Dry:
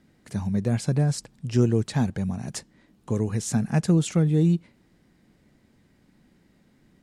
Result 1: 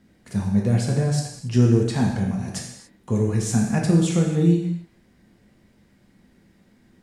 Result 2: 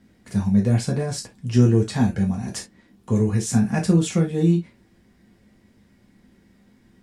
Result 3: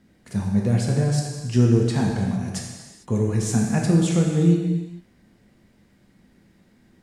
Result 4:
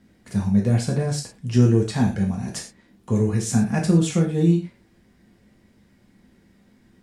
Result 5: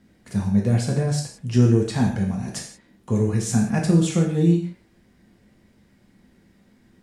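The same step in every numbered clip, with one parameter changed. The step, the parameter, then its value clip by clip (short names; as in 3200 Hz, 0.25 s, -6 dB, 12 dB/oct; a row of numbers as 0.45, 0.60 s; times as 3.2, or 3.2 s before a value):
non-linear reverb, gate: 310, 90, 480, 140, 200 ms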